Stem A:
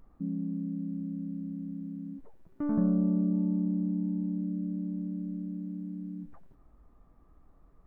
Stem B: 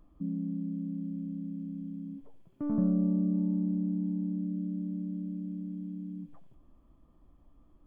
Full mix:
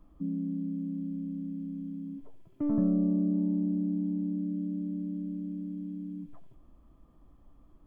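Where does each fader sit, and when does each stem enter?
−8.5, +2.0 decibels; 0.00, 0.00 seconds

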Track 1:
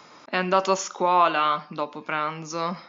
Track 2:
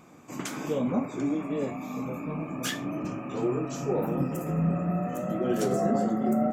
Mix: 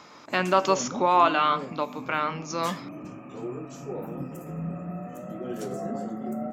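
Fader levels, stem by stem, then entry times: −0.5, −7.0 decibels; 0.00, 0.00 seconds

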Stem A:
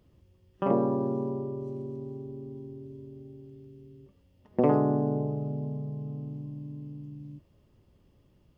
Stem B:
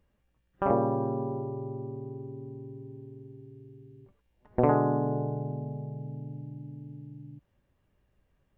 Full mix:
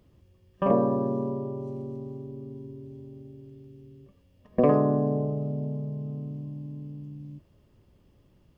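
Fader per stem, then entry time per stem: +2.0, −4.5 decibels; 0.00, 0.00 seconds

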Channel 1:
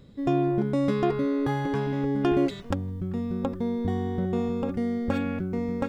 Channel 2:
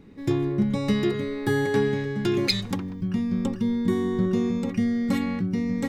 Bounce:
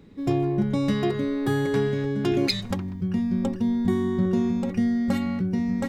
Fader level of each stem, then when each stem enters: −4.5, −2.0 decibels; 0.00, 0.00 seconds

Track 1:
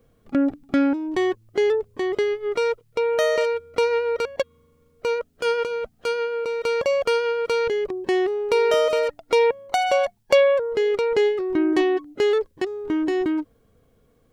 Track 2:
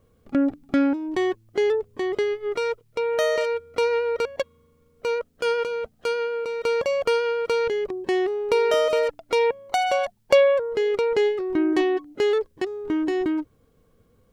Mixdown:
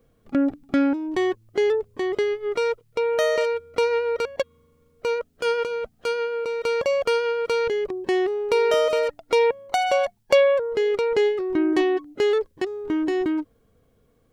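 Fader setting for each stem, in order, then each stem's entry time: −2.0, −17.0 decibels; 0.00, 0.00 seconds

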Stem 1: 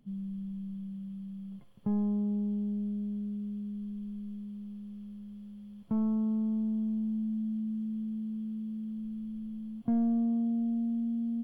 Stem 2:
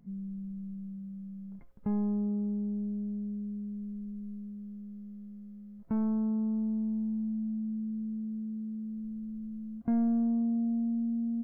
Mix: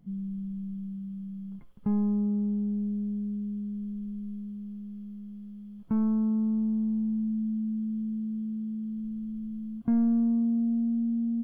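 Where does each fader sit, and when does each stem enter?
−6.0, +1.0 decibels; 0.00, 0.00 seconds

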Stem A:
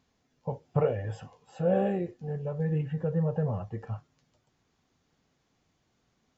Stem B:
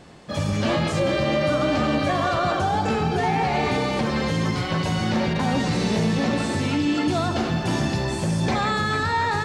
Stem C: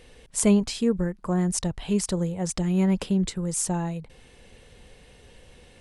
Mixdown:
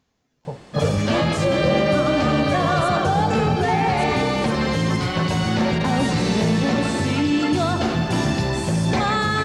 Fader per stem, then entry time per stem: +2.0, +2.5, −16.0 decibels; 0.00, 0.45, 2.45 seconds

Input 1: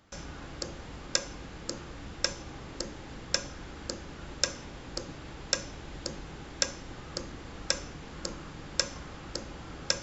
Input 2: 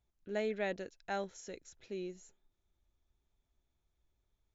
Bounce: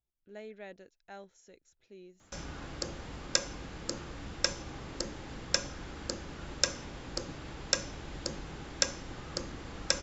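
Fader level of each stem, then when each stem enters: 0.0, −10.5 decibels; 2.20, 0.00 seconds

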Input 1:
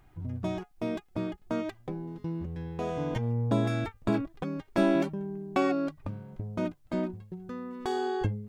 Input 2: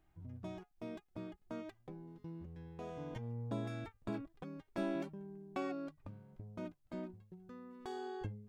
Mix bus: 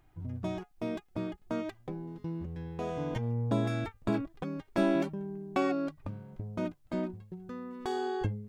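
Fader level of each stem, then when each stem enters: −6.0, +0.5 decibels; 0.00, 0.00 seconds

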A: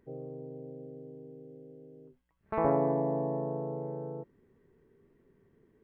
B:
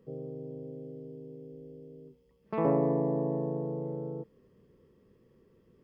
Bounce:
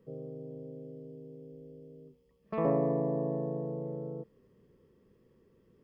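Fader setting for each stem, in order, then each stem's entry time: −12.5, −2.0 decibels; 0.00, 0.00 seconds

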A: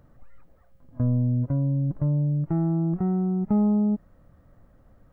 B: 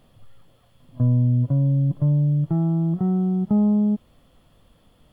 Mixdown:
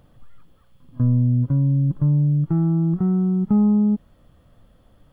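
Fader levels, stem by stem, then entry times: +0.5, −5.5 decibels; 0.00, 0.00 seconds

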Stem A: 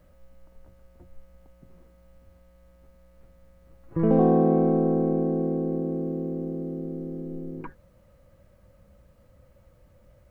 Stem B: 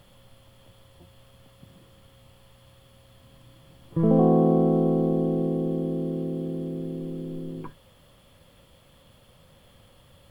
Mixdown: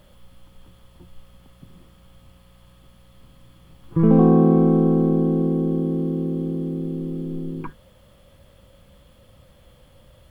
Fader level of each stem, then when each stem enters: +3.0, −1.0 decibels; 0.00, 0.00 seconds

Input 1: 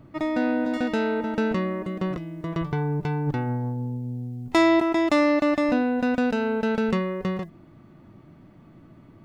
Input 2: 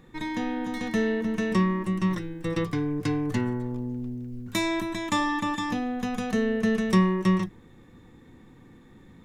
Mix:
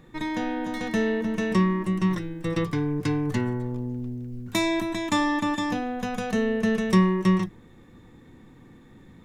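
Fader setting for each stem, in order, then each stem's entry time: −14.5, +1.0 decibels; 0.00, 0.00 seconds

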